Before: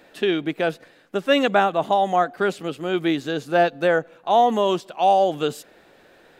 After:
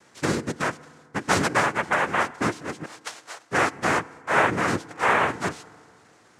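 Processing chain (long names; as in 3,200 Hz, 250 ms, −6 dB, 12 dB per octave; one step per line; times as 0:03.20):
0:02.85–0:03.51: four-pole ladder band-pass 1,800 Hz, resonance 90%
cochlear-implant simulation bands 3
feedback delay network reverb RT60 2.1 s, low-frequency decay 1.05×, high-frequency decay 0.45×, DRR 19.5 dB
level −4 dB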